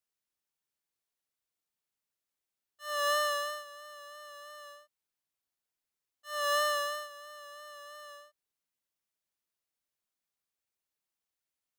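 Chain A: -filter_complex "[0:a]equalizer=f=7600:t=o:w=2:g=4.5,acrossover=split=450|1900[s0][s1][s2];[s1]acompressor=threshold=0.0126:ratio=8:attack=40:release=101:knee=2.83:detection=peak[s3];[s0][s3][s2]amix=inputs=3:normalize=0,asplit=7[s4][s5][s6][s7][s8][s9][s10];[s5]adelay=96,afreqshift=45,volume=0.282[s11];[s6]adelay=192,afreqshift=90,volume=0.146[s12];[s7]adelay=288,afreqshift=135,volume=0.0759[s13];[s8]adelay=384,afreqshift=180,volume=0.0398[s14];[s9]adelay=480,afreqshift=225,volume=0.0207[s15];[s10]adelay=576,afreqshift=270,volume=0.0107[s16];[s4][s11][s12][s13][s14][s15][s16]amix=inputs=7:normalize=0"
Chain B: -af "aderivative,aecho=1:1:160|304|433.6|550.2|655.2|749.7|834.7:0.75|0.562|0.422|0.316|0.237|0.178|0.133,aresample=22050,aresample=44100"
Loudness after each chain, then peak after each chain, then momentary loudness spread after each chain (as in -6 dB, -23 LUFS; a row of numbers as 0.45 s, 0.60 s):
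-33.0 LUFS, -39.5 LUFS; -18.5 dBFS, -23.5 dBFS; 18 LU, 19 LU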